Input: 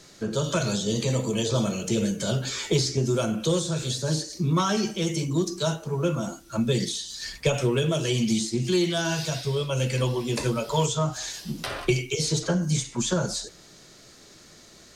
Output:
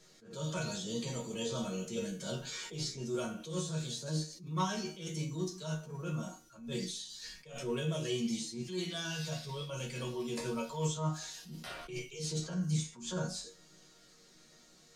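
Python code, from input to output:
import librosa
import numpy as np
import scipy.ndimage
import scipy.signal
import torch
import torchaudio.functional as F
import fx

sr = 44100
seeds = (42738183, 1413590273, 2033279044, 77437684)

y = fx.resonator_bank(x, sr, root=51, chord='minor', decay_s=0.27)
y = fx.attack_slew(y, sr, db_per_s=110.0)
y = y * librosa.db_to_amplitude(4.0)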